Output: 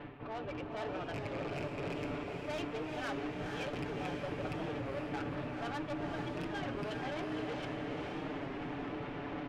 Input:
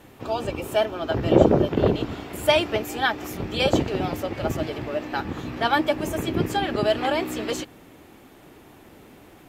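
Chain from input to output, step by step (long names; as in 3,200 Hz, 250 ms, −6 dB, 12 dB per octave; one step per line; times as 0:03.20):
loose part that buzzes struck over −22 dBFS, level −13 dBFS
low-pass filter 2,800 Hz 24 dB per octave
comb filter 6.9 ms, depth 63%
reversed playback
downward compressor 5 to 1, threshold −44 dBFS, peak gain reduction 29.5 dB
reversed playback
tube saturation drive 46 dB, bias 0.4
on a send: feedback delay with all-pass diffusion 470 ms, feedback 57%, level −3.5 dB
on the sum: wow of a warped record 33 1/3 rpm, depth 100 cents
level +9 dB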